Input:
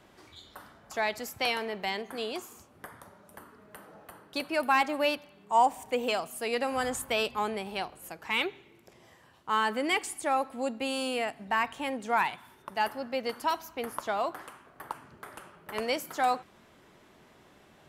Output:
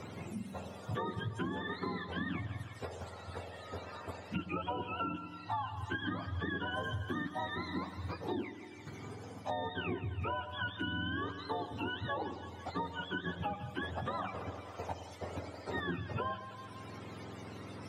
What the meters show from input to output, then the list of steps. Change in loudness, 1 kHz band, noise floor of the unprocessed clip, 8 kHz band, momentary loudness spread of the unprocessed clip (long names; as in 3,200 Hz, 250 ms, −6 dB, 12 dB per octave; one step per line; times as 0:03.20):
−9.0 dB, −10.0 dB, −59 dBFS, −18.0 dB, 20 LU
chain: frequency axis turned over on the octave scale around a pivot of 890 Hz
downward compressor, threshold −33 dBFS, peak gain reduction 13.5 dB
low-pass filter 11,000 Hz 12 dB per octave
echo with a time of its own for lows and highs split 790 Hz, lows 103 ms, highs 166 ms, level −13 dB
multiband upward and downward compressor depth 70%
level −1 dB